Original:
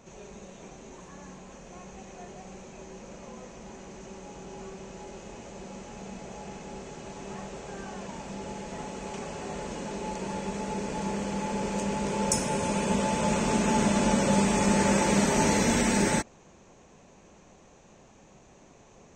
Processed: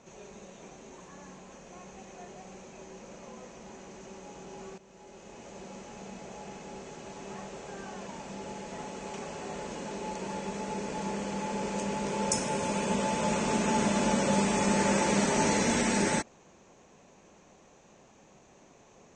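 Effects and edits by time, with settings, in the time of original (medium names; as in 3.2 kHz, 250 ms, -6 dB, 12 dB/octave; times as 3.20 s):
4.78–5.55 s: fade in, from -13.5 dB
whole clip: low-pass 8.8 kHz 24 dB/octave; bass shelf 110 Hz -9 dB; trim -1.5 dB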